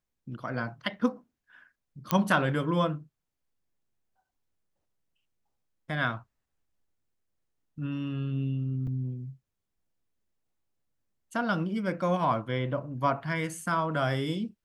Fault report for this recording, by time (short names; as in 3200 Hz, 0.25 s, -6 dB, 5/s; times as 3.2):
2.11 pop -9 dBFS
8.87 gap 4.4 ms